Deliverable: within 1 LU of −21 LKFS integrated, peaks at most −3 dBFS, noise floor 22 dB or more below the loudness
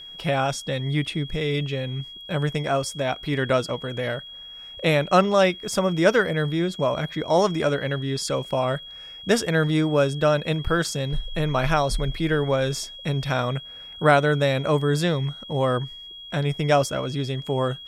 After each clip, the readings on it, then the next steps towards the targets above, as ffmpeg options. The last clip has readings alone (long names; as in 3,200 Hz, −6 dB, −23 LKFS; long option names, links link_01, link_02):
interfering tone 3,300 Hz; level of the tone −38 dBFS; integrated loudness −23.5 LKFS; sample peak −3.5 dBFS; target loudness −21.0 LKFS
→ -af "bandreject=frequency=3300:width=30"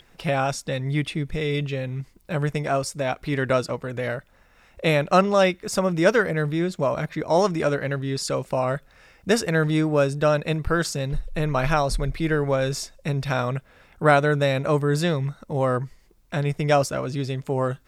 interfering tone none found; integrated loudness −23.5 LKFS; sample peak −3.5 dBFS; target loudness −21.0 LKFS
→ -af "volume=2.5dB,alimiter=limit=-3dB:level=0:latency=1"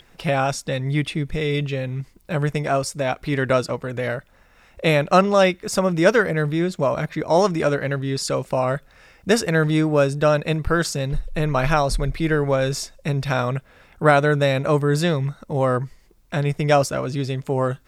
integrated loudness −21.5 LKFS; sample peak −3.0 dBFS; background noise floor −55 dBFS